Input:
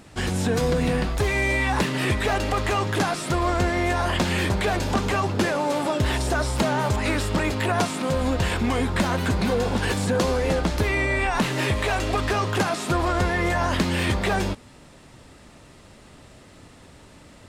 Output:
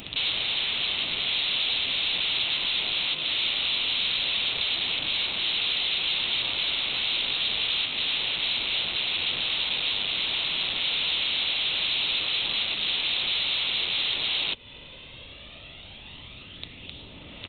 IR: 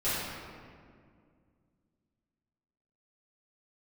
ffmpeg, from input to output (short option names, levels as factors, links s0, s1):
-af "acompressor=threshold=0.0224:ratio=4,aphaser=in_gain=1:out_gain=1:delay=2:decay=0.41:speed=0.17:type=sinusoidal,aeval=exprs='0.112*(cos(1*acos(clip(val(0)/0.112,-1,1)))-cos(1*PI/2))+0.00282*(cos(7*acos(clip(val(0)/0.112,-1,1)))-cos(7*PI/2))':c=same,aresample=8000,aeval=exprs='(mod(56.2*val(0)+1,2)-1)/56.2':c=same,aresample=44100,aexciter=amount=11.6:drive=2.2:freq=2500"